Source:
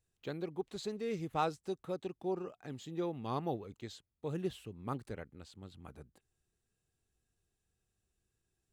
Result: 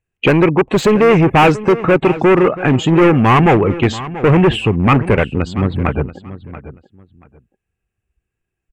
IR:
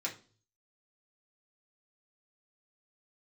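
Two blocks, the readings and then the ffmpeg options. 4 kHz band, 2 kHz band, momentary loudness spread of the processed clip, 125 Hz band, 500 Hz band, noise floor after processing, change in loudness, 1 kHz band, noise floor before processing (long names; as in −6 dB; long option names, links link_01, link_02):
+25.5 dB, +34.0 dB, 8 LU, +30.0 dB, +26.5 dB, −79 dBFS, +27.0 dB, +25.5 dB, −85 dBFS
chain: -filter_complex "[0:a]afftdn=noise_reduction=32:noise_floor=-60,apsyclip=31dB,asplit=2[link_01][link_02];[link_02]acompressor=threshold=-17dB:ratio=6,volume=-1dB[link_03];[link_01][link_03]amix=inputs=2:normalize=0,asoftclip=type=hard:threshold=-7.5dB,highshelf=frequency=3200:width_type=q:width=3:gain=-8,asplit=2[link_04][link_05];[link_05]adelay=683,lowpass=frequency=4400:poles=1,volume=-15dB,asplit=2[link_06][link_07];[link_07]adelay=683,lowpass=frequency=4400:poles=1,volume=0.2[link_08];[link_04][link_06][link_08]amix=inputs=3:normalize=0"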